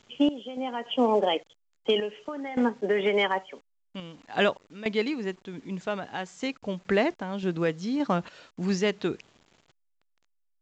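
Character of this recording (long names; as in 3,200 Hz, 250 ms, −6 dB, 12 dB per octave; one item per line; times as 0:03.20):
sample-and-hold tremolo, depth 85%
a quantiser's noise floor 10 bits, dither none
A-law companding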